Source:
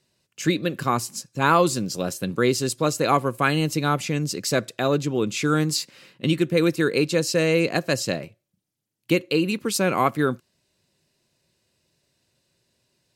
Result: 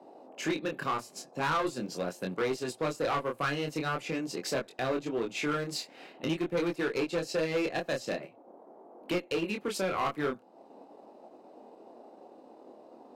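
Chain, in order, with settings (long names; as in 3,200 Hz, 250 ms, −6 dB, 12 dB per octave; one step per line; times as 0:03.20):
high-pass filter 130 Hz 24 dB per octave
bass and treble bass −10 dB, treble −11 dB
noise in a band 230–820 Hz −53 dBFS
in parallel at +2 dB: downward compressor, threshold −33 dBFS, peak gain reduction 18.5 dB
on the sum: asymmetric clip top −19 dBFS
chorus effect 0.44 Hz, depth 5.3 ms
soft clipping −19.5 dBFS, distortion −15 dB
transient designer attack +1 dB, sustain −5 dB
level −3.5 dB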